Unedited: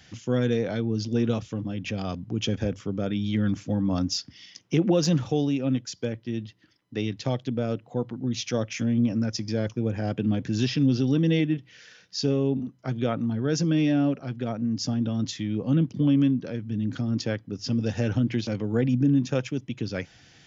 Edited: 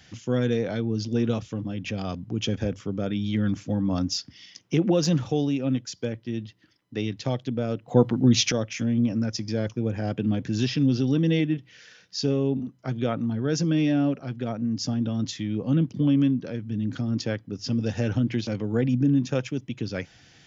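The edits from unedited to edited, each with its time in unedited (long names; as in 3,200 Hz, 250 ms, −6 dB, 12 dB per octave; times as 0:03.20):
0:07.88–0:08.52: clip gain +10 dB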